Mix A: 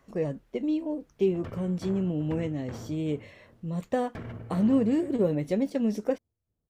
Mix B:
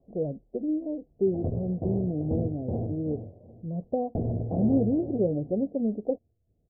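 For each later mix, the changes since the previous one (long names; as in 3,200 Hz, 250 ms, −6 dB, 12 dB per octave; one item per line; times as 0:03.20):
background +11.5 dB
master: add Chebyshev low-pass filter 730 Hz, order 5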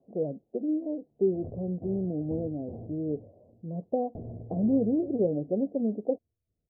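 speech: add high-pass filter 170 Hz 12 dB per octave
background −11.5 dB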